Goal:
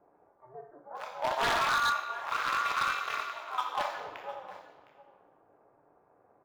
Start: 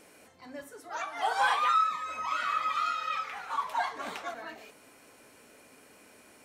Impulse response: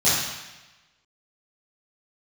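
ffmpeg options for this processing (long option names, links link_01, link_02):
-filter_complex "[0:a]acrossover=split=970[link_01][link_02];[link_02]acrusher=bits=4:mix=0:aa=0.000001[link_03];[link_01][link_03]amix=inputs=2:normalize=0,acrossover=split=520 2900:gain=0.0891 1 0.0708[link_04][link_05][link_06];[link_04][link_05][link_06]amix=inputs=3:normalize=0,aecho=1:1:710:0.141,asplit=2[link_07][link_08];[1:a]atrim=start_sample=2205,highshelf=frequency=3400:gain=9.5[link_09];[link_08][link_09]afir=irnorm=-1:irlink=0,volume=-20dB[link_10];[link_07][link_10]amix=inputs=2:normalize=0,aeval=exprs='val(0)*sin(2*PI*130*n/s)':channel_layout=same,aeval=exprs='0.0668*(abs(mod(val(0)/0.0668+3,4)-2)-1)':channel_layout=same,volume=2.5dB"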